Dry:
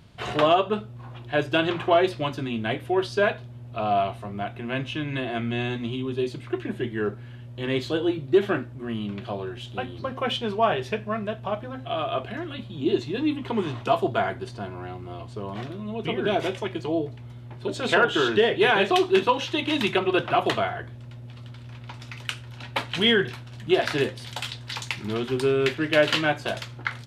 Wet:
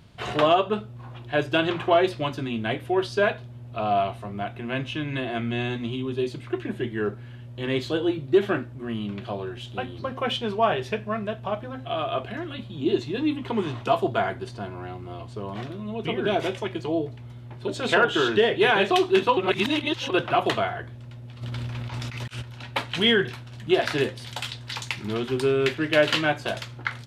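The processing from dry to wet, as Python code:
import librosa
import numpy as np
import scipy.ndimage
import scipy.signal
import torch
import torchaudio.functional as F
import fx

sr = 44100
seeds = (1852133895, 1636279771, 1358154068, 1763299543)

y = fx.over_compress(x, sr, threshold_db=-41.0, ratio=-0.5, at=(21.41, 22.41), fade=0.02)
y = fx.edit(y, sr, fx.reverse_span(start_s=19.37, length_s=0.73), tone=tone)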